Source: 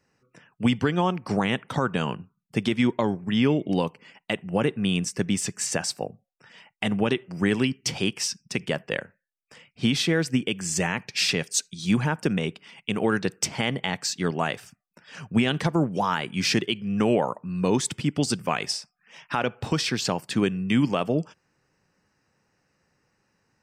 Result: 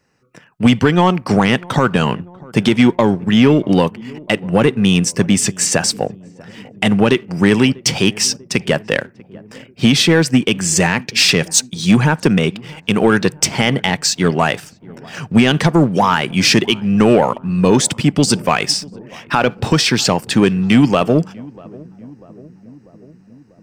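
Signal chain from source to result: sample leveller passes 1; on a send: darkening echo 0.643 s, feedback 68%, low-pass 900 Hz, level -22 dB; on the sum: gain +8.5 dB

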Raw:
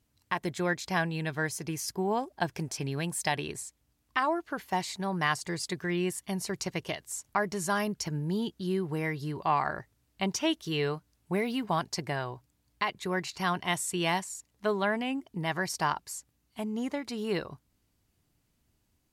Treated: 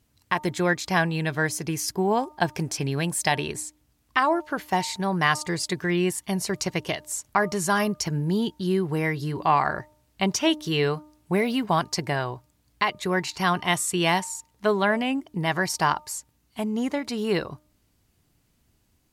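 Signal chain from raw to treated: de-hum 303.2 Hz, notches 4; gain +6.5 dB

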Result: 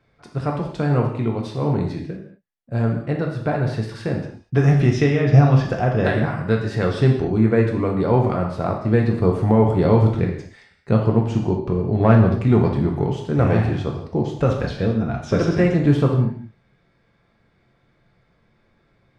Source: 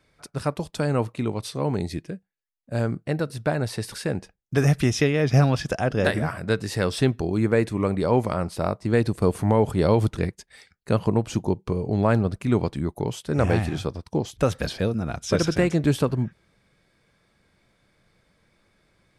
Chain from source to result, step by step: 12–13.05 sample leveller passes 1; tape spacing loss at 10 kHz 21 dB; non-linear reverb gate 0.26 s falling, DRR 0 dB; gain +2 dB

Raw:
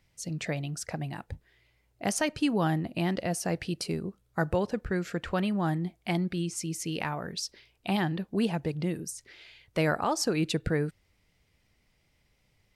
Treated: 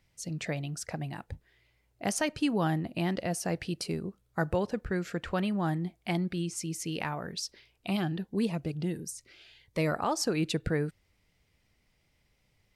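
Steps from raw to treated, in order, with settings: 7.87–9.94 cascading phaser rising 1.5 Hz; gain -1.5 dB

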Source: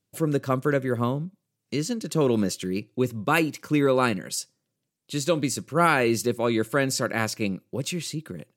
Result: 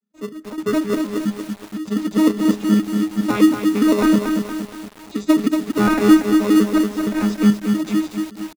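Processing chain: arpeggiated vocoder bare fifth, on G#3, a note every 0.103 s; comb 4 ms, depth 54%; AGC gain up to 8 dB; in parallel at -3 dB: sample-and-hold 28×; on the sum: step gate "xx..xxx.x" 104 bpm -12 dB; on a send at -17.5 dB: reverb RT60 0.55 s, pre-delay 6 ms; on the sum: lo-fi delay 0.233 s, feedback 55%, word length 5-bit, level -5 dB; gain -5 dB

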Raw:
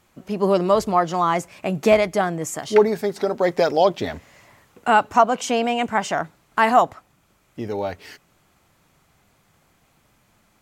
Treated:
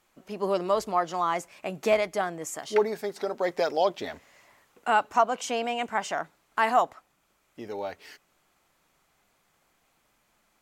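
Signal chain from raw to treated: bell 100 Hz -12 dB 2.4 oct; gain -6 dB

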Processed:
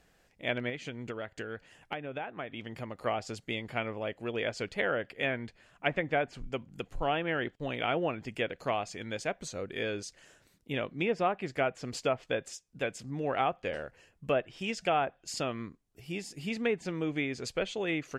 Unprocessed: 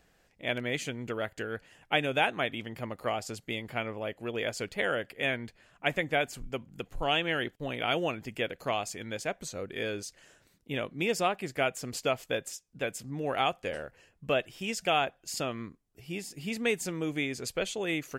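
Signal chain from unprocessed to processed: treble ducked by the level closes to 1700 Hz, closed at -24.5 dBFS; 0.69–3 compressor 6:1, threshold -35 dBFS, peak gain reduction 11.5 dB

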